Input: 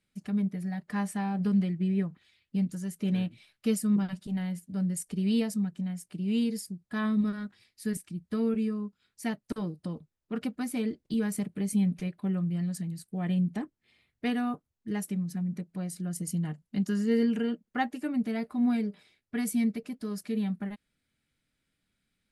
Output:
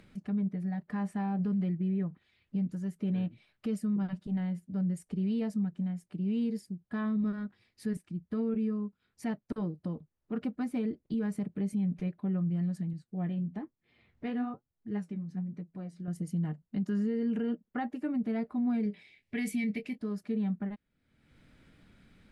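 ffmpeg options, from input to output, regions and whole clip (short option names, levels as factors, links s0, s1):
-filter_complex "[0:a]asettb=1/sr,asplit=3[s0][s1][s2];[s0]atrim=end=12.934[s3];[s1]atrim=start=12.93:end=16.08,asetpts=PTS-STARTPTS,afade=t=in:d=0.004:c=qsin,afade=t=out:st=3.146:d=0.004:c=qsin,lowpass=6800,flanger=delay=5.5:depth=9:regen=50:speed=1.1:shape=triangular[s4];[s2]atrim=start=16.076[s5];[s3][s4]acrossfade=d=0.004:c1=hsin:c2=qsin[s6];[s6][s5]acrossfade=d=0.004:c1=qsin:c2=hsin,asettb=1/sr,asplit=3[s7][s8][s9];[s7]atrim=end=18.834[s10];[s8]atrim=start=18.83:end=19.98,asetpts=PTS-STARTPTS,afade=t=in:d=0.004:c=qsin,afade=t=out:st=1.146:d=0.004:c=qsin,highshelf=f=1700:t=q:w=3:g=8,asplit=2[s11][s12];[s12]adelay=24,volume=0.282[s13];[s11][s13]amix=inputs=2:normalize=0,atrim=end_sample=50715[s14];[s9]atrim=start=19.976[s15];[s10][s14]acrossfade=d=0.004:c1=hsin:c2=qsin[s16];[s16][s15]acrossfade=d=0.004:c1=qsin:c2=hsin,lowpass=f=1200:p=1,alimiter=level_in=1.12:limit=0.0631:level=0:latency=1:release=37,volume=0.891,acompressor=mode=upward:threshold=0.00891:ratio=2.5"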